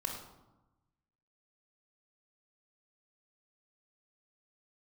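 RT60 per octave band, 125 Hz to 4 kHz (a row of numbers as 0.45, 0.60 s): 1.5, 1.3, 1.0, 1.1, 0.70, 0.55 s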